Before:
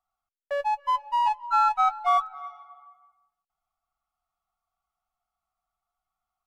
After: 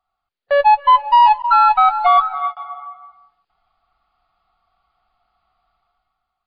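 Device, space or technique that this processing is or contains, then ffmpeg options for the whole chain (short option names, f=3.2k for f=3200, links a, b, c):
low-bitrate web radio: -filter_complex "[0:a]asettb=1/sr,asplit=3[a][b][c];[a]atrim=end=1.424[d];[b]atrim=start=1.42:end=2.57,asetpts=PTS-STARTPTS,afade=t=in:d=0.004:c=qsin,afade=t=out:st=1.146:d=0.004:c=qsin,agate=range=-56dB:threshold=-39dB:ratio=16:detection=peak[e];[c]atrim=start=2.566[f];[d][e]acrossfade=d=0.004:c1=hsin:c2=qsin[g];[g][f]acrossfade=d=0.004:c1=qsin:c2=hsin,dynaudnorm=f=110:g=11:m=11dB,alimiter=limit=-12.5dB:level=0:latency=1:release=80,volume=8.5dB" -ar 11025 -c:a libmp3lame -b:a 24k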